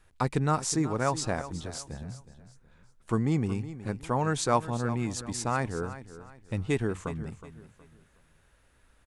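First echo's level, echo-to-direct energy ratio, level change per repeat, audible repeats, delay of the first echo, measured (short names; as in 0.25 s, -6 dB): -14.0 dB, -13.5 dB, -9.5 dB, 3, 0.368 s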